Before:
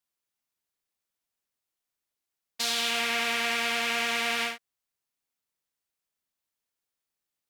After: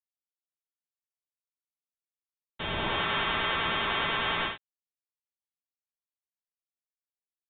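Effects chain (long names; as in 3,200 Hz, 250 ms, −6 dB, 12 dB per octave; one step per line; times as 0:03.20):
bit-depth reduction 8 bits, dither none
formants moved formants +2 semitones
voice inversion scrambler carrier 3,900 Hz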